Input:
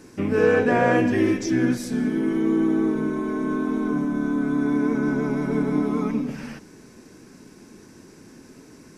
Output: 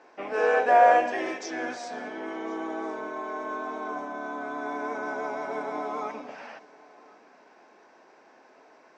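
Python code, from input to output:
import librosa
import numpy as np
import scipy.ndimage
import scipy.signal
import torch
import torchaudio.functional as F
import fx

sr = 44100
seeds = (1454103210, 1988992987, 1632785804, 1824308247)

p1 = fx.highpass_res(x, sr, hz=700.0, q=3.6)
p2 = p1 + fx.echo_single(p1, sr, ms=1061, db=-23.5, dry=0)
p3 = fx.env_lowpass(p2, sr, base_hz=2700.0, full_db=-21.5)
p4 = scipy.signal.sosfilt(scipy.signal.butter(6, 7900.0, 'lowpass', fs=sr, output='sos'), p3)
y = F.gain(torch.from_numpy(p4), -3.5).numpy()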